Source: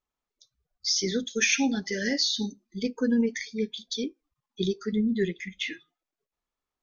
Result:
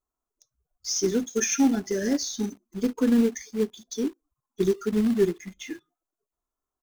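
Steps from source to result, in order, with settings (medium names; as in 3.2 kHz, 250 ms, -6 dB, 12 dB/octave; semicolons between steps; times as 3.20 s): high-order bell 3 kHz -16 dB; comb 2.9 ms, depth 36%; in parallel at -4 dB: companded quantiser 4-bit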